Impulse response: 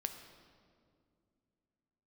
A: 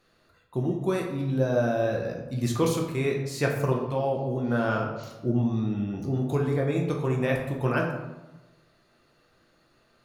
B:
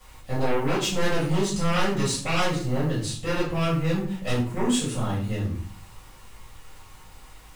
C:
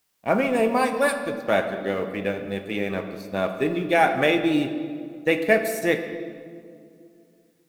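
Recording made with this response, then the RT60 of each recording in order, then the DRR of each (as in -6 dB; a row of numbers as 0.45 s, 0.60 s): C; 1.1 s, 0.50 s, 2.3 s; -0.5 dB, -10.0 dB, 6.0 dB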